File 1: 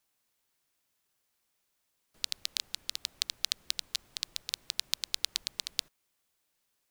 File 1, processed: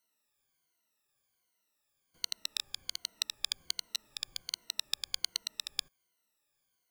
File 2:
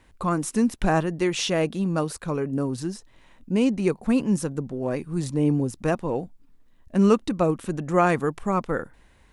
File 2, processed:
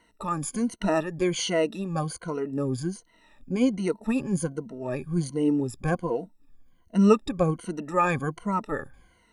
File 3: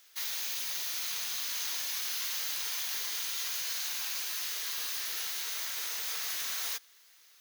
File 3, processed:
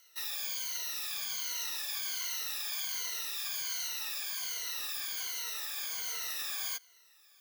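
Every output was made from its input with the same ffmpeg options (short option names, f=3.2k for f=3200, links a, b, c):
-af "afftfilt=real='re*pow(10,19/40*sin(2*PI*(1.9*log(max(b,1)*sr/1024/100)/log(2)-(-1.3)*(pts-256)/sr)))':imag='im*pow(10,19/40*sin(2*PI*(1.9*log(max(b,1)*sr/1024/100)/log(2)-(-1.3)*(pts-256)/sr)))':win_size=1024:overlap=0.75,volume=-6dB"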